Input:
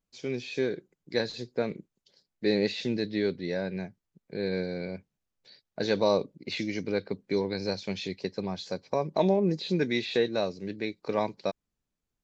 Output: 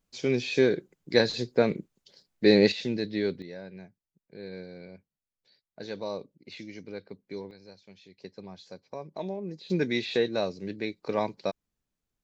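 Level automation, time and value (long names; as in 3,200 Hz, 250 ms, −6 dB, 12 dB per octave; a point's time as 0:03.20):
+6.5 dB
from 0:02.72 −0.5 dB
from 0:03.42 −10.5 dB
from 0:07.51 −19.5 dB
from 0:08.18 −11 dB
from 0:09.70 0 dB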